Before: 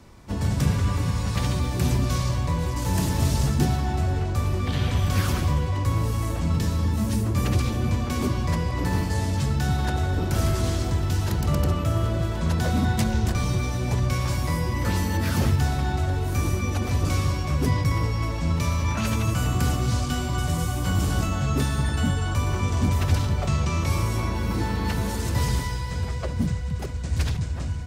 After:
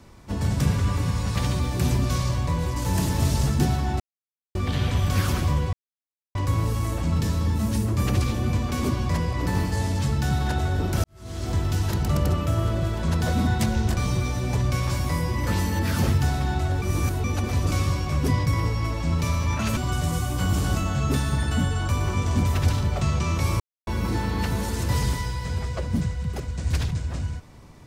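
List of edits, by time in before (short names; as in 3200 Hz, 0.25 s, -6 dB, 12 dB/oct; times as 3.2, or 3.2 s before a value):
4–4.55 mute
5.73 insert silence 0.62 s
10.42–10.92 fade in quadratic
16.2–16.62 reverse
19.15–20.23 cut
24.06–24.33 mute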